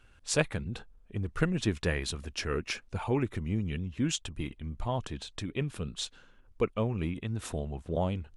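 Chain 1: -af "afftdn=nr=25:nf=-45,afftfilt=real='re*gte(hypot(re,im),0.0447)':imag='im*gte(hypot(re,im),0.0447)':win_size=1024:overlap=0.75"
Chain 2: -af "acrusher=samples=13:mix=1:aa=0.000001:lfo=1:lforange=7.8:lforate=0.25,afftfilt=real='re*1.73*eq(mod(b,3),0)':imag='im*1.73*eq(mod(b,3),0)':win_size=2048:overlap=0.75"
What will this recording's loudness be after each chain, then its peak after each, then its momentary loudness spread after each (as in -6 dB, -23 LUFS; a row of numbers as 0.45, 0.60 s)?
-34.0, -36.5 LUFS; -11.0, -17.0 dBFS; 10, 10 LU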